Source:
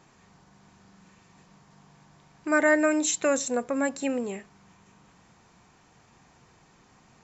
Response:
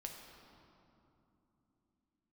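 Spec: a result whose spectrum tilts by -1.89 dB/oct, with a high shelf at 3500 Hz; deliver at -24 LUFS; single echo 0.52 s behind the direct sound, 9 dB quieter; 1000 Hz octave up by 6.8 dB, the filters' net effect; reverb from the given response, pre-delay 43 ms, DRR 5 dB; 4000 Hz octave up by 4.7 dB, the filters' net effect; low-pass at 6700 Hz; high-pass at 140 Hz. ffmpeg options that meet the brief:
-filter_complex "[0:a]highpass=140,lowpass=6.7k,equalizer=f=1k:t=o:g=8,highshelf=f=3.5k:g=3,equalizer=f=4k:t=o:g=4,aecho=1:1:520:0.355,asplit=2[a][b];[1:a]atrim=start_sample=2205,adelay=43[c];[b][c]afir=irnorm=-1:irlink=0,volume=-2dB[d];[a][d]amix=inputs=2:normalize=0,volume=-2.5dB"

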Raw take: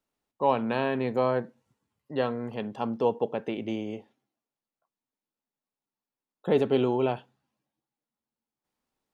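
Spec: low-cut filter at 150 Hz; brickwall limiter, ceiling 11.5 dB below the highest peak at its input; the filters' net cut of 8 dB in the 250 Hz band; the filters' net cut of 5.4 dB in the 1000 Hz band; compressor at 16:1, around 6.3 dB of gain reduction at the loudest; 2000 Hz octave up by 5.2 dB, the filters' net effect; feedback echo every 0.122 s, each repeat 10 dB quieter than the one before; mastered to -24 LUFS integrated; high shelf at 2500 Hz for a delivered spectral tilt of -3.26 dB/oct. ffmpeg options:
-af "highpass=150,equalizer=f=250:t=o:g=-9,equalizer=f=1k:t=o:g=-8.5,equalizer=f=2k:t=o:g=6,highshelf=f=2.5k:g=7,acompressor=threshold=-28dB:ratio=16,alimiter=level_in=4dB:limit=-24dB:level=0:latency=1,volume=-4dB,aecho=1:1:122|244|366|488:0.316|0.101|0.0324|0.0104,volume=16dB"

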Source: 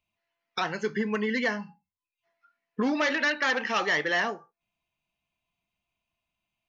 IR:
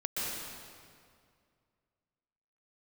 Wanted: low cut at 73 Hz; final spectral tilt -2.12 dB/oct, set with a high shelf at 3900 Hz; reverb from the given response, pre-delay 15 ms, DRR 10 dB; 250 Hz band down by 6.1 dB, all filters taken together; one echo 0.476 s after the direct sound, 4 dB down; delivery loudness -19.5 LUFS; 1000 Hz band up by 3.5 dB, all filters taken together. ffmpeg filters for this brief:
-filter_complex "[0:a]highpass=73,equalizer=f=250:t=o:g=-7.5,equalizer=f=1k:t=o:g=4.5,highshelf=f=3.9k:g=6.5,aecho=1:1:476:0.631,asplit=2[a][b];[1:a]atrim=start_sample=2205,adelay=15[c];[b][c]afir=irnorm=-1:irlink=0,volume=-16dB[d];[a][d]amix=inputs=2:normalize=0,volume=5.5dB"

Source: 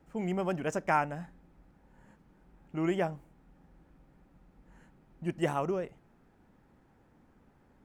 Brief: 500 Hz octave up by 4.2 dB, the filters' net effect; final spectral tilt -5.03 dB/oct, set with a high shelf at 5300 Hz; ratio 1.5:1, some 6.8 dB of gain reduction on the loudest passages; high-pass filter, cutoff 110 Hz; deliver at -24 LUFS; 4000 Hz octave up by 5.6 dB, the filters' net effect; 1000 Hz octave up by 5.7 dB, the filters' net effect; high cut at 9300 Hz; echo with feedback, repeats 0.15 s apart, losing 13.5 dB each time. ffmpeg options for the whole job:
-af "highpass=110,lowpass=9.3k,equalizer=f=500:t=o:g=4,equalizer=f=1k:t=o:g=5.5,equalizer=f=4k:t=o:g=7,highshelf=f=5.3k:g=4,acompressor=threshold=-36dB:ratio=1.5,aecho=1:1:150|300:0.211|0.0444,volume=10.5dB"

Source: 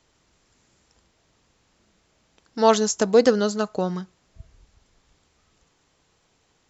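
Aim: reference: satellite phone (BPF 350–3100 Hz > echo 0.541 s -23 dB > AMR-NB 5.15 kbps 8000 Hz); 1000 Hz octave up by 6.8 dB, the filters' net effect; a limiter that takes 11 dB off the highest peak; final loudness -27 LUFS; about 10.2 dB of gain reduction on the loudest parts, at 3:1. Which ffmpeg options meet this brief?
-af "equalizer=f=1k:t=o:g=8.5,acompressor=threshold=-22dB:ratio=3,alimiter=limit=-20.5dB:level=0:latency=1,highpass=350,lowpass=3.1k,aecho=1:1:541:0.0708,volume=8dB" -ar 8000 -c:a libopencore_amrnb -b:a 5150

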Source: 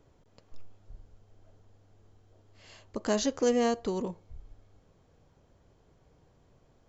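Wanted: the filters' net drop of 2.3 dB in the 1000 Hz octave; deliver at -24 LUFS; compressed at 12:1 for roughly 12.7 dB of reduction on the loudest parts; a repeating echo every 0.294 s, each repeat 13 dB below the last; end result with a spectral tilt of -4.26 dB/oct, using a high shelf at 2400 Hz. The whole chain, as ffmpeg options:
-af "equalizer=f=1k:t=o:g=-4,highshelf=f=2.4k:g=3,acompressor=threshold=-35dB:ratio=12,aecho=1:1:294|588|882:0.224|0.0493|0.0108,volume=18.5dB"

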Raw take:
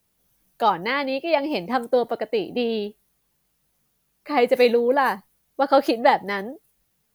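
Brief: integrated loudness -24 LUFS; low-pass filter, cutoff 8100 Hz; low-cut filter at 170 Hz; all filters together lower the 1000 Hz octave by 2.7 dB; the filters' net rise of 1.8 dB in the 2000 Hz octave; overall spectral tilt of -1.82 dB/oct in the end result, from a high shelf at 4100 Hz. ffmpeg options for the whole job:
-af "highpass=170,lowpass=8.1k,equalizer=f=1k:t=o:g=-4,equalizer=f=2k:t=o:g=5,highshelf=f=4.1k:g=-8.5,volume=-1dB"

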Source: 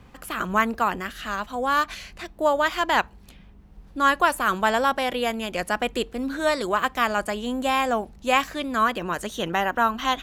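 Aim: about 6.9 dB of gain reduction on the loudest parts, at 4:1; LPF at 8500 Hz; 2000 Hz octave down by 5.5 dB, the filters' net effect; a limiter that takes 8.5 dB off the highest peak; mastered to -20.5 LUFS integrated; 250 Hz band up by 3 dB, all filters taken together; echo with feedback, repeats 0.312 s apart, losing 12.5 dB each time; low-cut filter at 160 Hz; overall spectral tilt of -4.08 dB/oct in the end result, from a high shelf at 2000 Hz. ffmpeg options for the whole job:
-af "highpass=160,lowpass=8.5k,equalizer=f=250:t=o:g=4.5,highshelf=f=2k:g=-7,equalizer=f=2k:t=o:g=-3.5,acompressor=threshold=-25dB:ratio=4,alimiter=limit=-23.5dB:level=0:latency=1,aecho=1:1:312|624|936:0.237|0.0569|0.0137,volume=12.5dB"

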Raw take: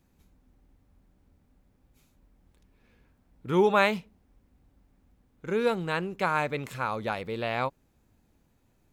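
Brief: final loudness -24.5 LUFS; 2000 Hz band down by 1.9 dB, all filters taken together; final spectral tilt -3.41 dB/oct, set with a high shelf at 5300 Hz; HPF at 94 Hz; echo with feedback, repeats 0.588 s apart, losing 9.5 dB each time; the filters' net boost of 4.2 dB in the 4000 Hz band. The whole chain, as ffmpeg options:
-af "highpass=94,equalizer=f=2k:t=o:g=-4,equalizer=f=4k:t=o:g=7.5,highshelf=f=5.3k:g=-3.5,aecho=1:1:588|1176|1764|2352:0.335|0.111|0.0365|0.012,volume=4.5dB"

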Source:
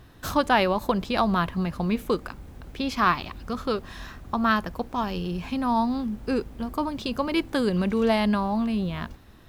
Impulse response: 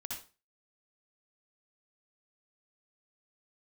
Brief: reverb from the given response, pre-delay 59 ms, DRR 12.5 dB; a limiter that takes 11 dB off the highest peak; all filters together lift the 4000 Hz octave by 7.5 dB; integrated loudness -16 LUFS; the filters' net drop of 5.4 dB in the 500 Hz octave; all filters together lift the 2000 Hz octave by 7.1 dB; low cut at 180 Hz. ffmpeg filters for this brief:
-filter_complex "[0:a]highpass=180,equalizer=f=500:t=o:g=-7.5,equalizer=f=2k:t=o:g=8.5,equalizer=f=4k:t=o:g=6.5,alimiter=limit=-14dB:level=0:latency=1,asplit=2[a][b];[1:a]atrim=start_sample=2205,adelay=59[c];[b][c]afir=irnorm=-1:irlink=0,volume=-11.5dB[d];[a][d]amix=inputs=2:normalize=0,volume=11.5dB"

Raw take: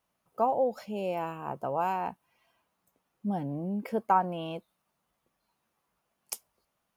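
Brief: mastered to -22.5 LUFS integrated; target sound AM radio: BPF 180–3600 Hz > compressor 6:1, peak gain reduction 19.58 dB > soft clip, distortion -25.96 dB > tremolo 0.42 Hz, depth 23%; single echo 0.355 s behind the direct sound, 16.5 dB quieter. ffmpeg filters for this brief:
-af "highpass=180,lowpass=3.6k,aecho=1:1:355:0.15,acompressor=threshold=-40dB:ratio=6,asoftclip=threshold=-28.5dB,tremolo=f=0.42:d=0.23,volume=24.5dB"

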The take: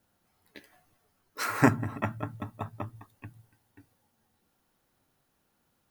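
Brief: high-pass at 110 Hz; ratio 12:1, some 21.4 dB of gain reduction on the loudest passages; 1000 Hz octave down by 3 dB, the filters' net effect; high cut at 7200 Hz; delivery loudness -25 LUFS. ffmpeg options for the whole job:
-af "highpass=110,lowpass=7.2k,equalizer=f=1k:t=o:g=-4,acompressor=threshold=-37dB:ratio=12,volume=20.5dB"

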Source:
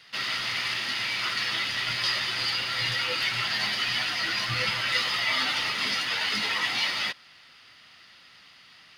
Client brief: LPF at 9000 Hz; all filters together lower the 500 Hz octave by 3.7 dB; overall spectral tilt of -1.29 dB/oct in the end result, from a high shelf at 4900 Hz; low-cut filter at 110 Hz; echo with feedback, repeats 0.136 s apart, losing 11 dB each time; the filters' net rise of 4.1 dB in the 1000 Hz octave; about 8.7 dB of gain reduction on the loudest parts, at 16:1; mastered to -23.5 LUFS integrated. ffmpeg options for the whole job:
-af "highpass=110,lowpass=9k,equalizer=f=500:t=o:g=-7,equalizer=f=1k:t=o:g=7.5,highshelf=f=4.9k:g=-7,acompressor=threshold=-31dB:ratio=16,aecho=1:1:136|272|408:0.282|0.0789|0.0221,volume=9dB"

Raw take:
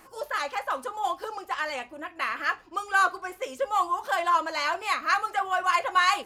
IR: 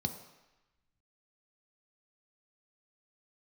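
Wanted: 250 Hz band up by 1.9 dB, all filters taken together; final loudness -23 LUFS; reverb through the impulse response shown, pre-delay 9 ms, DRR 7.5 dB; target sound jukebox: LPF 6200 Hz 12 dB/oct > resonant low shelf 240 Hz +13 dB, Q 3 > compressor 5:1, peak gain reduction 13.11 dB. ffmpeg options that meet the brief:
-filter_complex "[0:a]equalizer=f=250:t=o:g=4,asplit=2[a][b];[1:a]atrim=start_sample=2205,adelay=9[c];[b][c]afir=irnorm=-1:irlink=0,volume=-9.5dB[d];[a][d]amix=inputs=2:normalize=0,lowpass=6.2k,lowshelf=f=240:t=q:w=3:g=13,acompressor=threshold=-31dB:ratio=5,volume=11.5dB"

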